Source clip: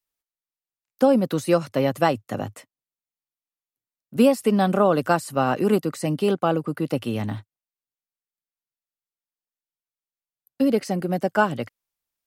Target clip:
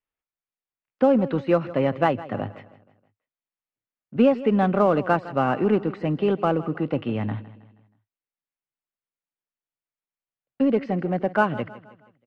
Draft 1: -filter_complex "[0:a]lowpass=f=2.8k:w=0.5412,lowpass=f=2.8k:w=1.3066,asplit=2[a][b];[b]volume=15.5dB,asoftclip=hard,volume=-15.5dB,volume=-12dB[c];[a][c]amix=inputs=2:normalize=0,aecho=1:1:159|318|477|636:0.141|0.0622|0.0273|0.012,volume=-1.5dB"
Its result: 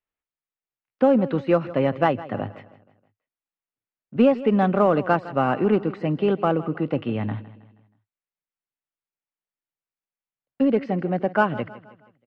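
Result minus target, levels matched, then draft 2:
overloaded stage: distortion -7 dB
-filter_complex "[0:a]lowpass=f=2.8k:w=0.5412,lowpass=f=2.8k:w=1.3066,asplit=2[a][b];[b]volume=23.5dB,asoftclip=hard,volume=-23.5dB,volume=-12dB[c];[a][c]amix=inputs=2:normalize=0,aecho=1:1:159|318|477|636:0.141|0.0622|0.0273|0.012,volume=-1.5dB"

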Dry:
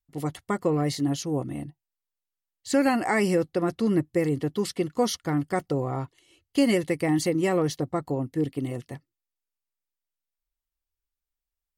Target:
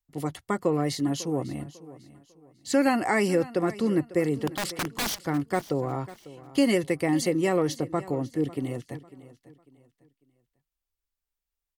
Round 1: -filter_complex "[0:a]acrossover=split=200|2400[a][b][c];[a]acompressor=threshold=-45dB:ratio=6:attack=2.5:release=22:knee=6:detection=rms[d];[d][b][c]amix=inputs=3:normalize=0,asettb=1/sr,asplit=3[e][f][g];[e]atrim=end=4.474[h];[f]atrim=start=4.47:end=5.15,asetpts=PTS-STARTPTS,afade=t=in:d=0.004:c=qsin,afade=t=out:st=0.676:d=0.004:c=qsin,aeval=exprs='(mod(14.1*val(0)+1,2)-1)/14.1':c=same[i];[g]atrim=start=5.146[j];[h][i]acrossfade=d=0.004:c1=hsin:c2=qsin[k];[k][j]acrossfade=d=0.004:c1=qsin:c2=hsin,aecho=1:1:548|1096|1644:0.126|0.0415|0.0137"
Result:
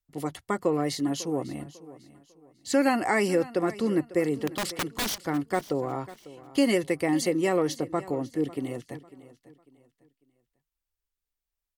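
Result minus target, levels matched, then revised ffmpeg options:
compressor: peak gain reduction +9 dB
-filter_complex "[0:a]acrossover=split=200|2400[a][b][c];[a]acompressor=threshold=-34dB:ratio=6:attack=2.5:release=22:knee=6:detection=rms[d];[d][b][c]amix=inputs=3:normalize=0,asettb=1/sr,asplit=3[e][f][g];[e]atrim=end=4.474[h];[f]atrim=start=4.47:end=5.15,asetpts=PTS-STARTPTS,afade=t=in:d=0.004:c=qsin,afade=t=out:st=0.676:d=0.004:c=qsin,aeval=exprs='(mod(14.1*val(0)+1,2)-1)/14.1':c=same[i];[g]atrim=start=5.146[j];[h][i]acrossfade=d=0.004:c1=hsin:c2=qsin[k];[k][j]acrossfade=d=0.004:c1=qsin:c2=hsin,aecho=1:1:548|1096|1644:0.126|0.0415|0.0137"

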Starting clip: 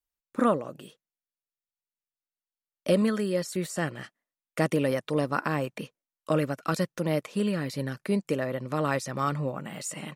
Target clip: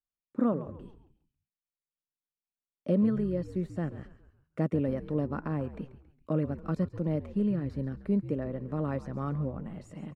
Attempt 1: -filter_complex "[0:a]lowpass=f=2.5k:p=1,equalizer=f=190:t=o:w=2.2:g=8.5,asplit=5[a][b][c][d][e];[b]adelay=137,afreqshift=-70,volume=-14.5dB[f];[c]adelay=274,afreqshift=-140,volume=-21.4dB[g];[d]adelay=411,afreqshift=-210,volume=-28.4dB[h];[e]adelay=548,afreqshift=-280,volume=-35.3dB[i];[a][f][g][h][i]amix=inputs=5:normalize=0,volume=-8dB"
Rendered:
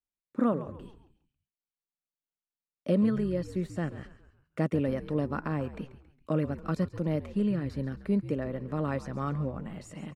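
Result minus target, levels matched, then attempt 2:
2000 Hz band +5.0 dB
-filter_complex "[0:a]lowpass=f=820:p=1,equalizer=f=190:t=o:w=2.2:g=8.5,asplit=5[a][b][c][d][e];[b]adelay=137,afreqshift=-70,volume=-14.5dB[f];[c]adelay=274,afreqshift=-140,volume=-21.4dB[g];[d]adelay=411,afreqshift=-210,volume=-28.4dB[h];[e]adelay=548,afreqshift=-280,volume=-35.3dB[i];[a][f][g][h][i]amix=inputs=5:normalize=0,volume=-8dB"

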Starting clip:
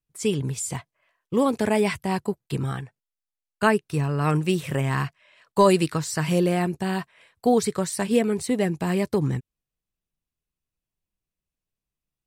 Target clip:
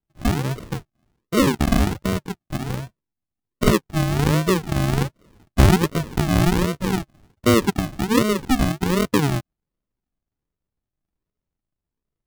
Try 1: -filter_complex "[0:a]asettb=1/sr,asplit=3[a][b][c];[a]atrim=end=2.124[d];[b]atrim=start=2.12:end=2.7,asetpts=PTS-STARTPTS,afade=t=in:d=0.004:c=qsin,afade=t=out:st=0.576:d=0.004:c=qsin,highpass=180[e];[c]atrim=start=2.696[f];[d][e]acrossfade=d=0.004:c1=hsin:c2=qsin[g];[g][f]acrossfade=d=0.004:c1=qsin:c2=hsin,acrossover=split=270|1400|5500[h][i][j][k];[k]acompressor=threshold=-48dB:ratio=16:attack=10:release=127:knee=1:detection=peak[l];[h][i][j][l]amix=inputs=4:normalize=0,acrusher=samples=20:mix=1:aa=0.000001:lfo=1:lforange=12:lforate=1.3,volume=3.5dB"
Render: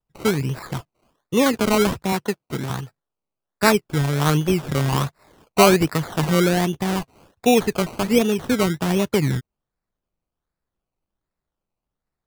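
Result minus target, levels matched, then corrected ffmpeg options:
decimation with a swept rate: distortion -15 dB
-filter_complex "[0:a]asettb=1/sr,asplit=3[a][b][c];[a]atrim=end=2.124[d];[b]atrim=start=2.12:end=2.7,asetpts=PTS-STARTPTS,afade=t=in:d=0.004:c=qsin,afade=t=out:st=0.576:d=0.004:c=qsin,highpass=180[e];[c]atrim=start=2.696[f];[d][e]acrossfade=d=0.004:c1=hsin:c2=qsin[g];[g][f]acrossfade=d=0.004:c1=qsin:c2=hsin,acrossover=split=270|1400|5500[h][i][j][k];[k]acompressor=threshold=-48dB:ratio=16:attack=10:release=127:knee=1:detection=peak[l];[h][i][j][l]amix=inputs=4:normalize=0,acrusher=samples=74:mix=1:aa=0.000001:lfo=1:lforange=44.4:lforate=1.3,volume=3.5dB"

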